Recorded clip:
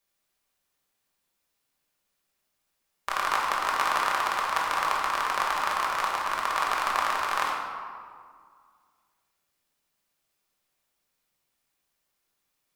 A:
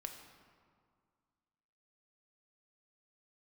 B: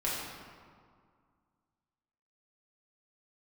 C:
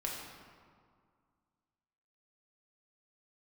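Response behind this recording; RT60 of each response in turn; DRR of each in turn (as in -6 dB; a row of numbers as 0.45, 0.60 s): C; 2.0, 2.0, 2.0 s; 3.5, -8.0, -3.5 dB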